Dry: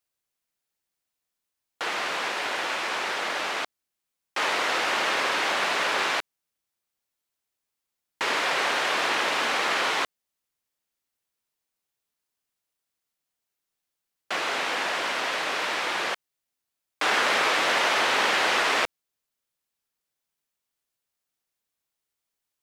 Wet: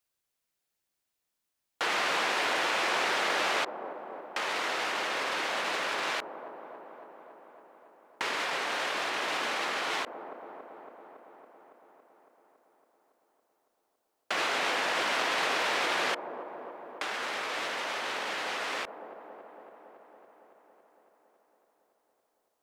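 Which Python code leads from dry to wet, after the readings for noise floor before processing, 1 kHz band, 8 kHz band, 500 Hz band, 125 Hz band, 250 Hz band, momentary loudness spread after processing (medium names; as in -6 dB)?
-85 dBFS, -5.0 dB, -5.5 dB, -4.0 dB, -4.5 dB, -4.0 dB, 18 LU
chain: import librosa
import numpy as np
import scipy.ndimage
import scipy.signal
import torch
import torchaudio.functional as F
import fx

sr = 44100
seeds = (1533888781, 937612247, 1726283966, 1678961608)

y = fx.over_compress(x, sr, threshold_db=-29.0, ratio=-1.0)
y = fx.echo_wet_bandpass(y, sr, ms=279, feedback_pct=73, hz=420.0, wet_db=-6.5)
y = fx.end_taper(y, sr, db_per_s=380.0)
y = F.gain(torch.from_numpy(y), -2.5).numpy()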